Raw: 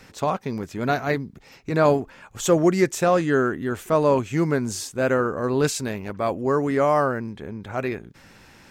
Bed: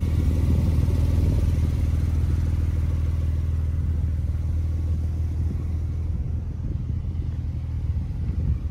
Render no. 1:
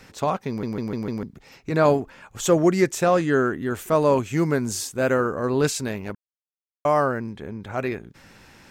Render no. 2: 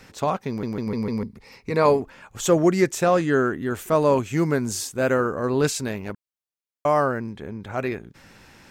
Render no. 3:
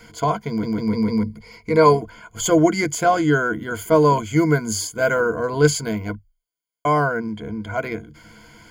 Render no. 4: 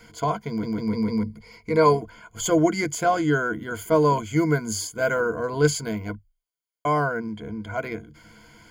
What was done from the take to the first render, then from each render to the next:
0:00.48: stutter in place 0.15 s, 5 plays; 0:03.70–0:05.36: high-shelf EQ 9,000 Hz +6.5 dB; 0:06.15–0:06.85: silence
0:00.86–0:02.02: EQ curve with evenly spaced ripples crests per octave 0.9, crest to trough 8 dB
EQ curve with evenly spaced ripples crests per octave 1.8, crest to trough 18 dB
level −4 dB

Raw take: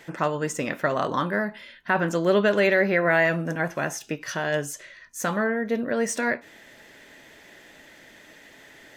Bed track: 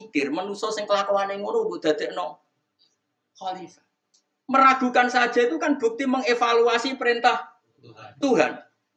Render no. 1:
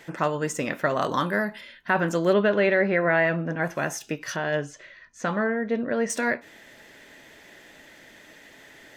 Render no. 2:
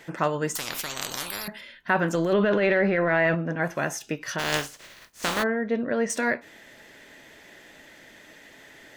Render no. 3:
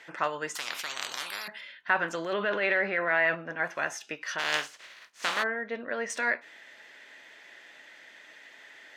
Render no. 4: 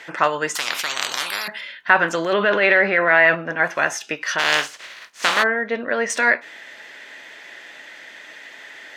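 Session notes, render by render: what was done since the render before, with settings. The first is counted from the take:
0:01.01–0:01.61: high-shelf EQ 4,500 Hz +8.5 dB; 0:02.33–0:03.62: high-frequency loss of the air 200 metres; 0:04.36–0:06.10: high-frequency loss of the air 140 metres
0:00.55–0:01.48: every bin compressed towards the loudest bin 10 to 1; 0:02.14–0:03.35: transient designer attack −12 dB, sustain +6 dB; 0:04.38–0:05.42: compressing power law on the bin magnitudes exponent 0.34
resonant band-pass 2,100 Hz, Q 0.58
level +11 dB; brickwall limiter −1 dBFS, peak gain reduction 3 dB

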